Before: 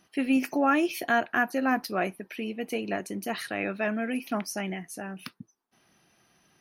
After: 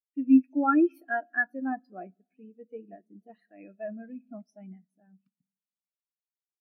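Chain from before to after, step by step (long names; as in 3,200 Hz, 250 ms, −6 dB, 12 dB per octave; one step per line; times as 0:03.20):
0:00.50–0:01.65: high-shelf EQ 5,300 Hz +11 dB
rectangular room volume 3,700 cubic metres, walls mixed, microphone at 0.56 metres
every bin expanded away from the loudest bin 2.5 to 1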